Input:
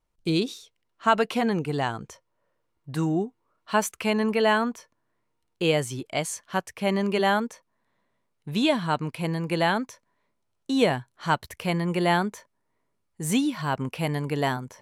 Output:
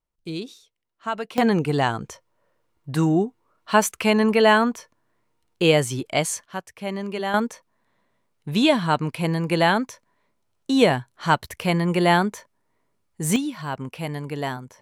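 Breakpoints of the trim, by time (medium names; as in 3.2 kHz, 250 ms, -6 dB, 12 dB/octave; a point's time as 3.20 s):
-7 dB
from 1.38 s +5.5 dB
from 6.45 s -4.5 dB
from 7.34 s +4.5 dB
from 13.36 s -2.5 dB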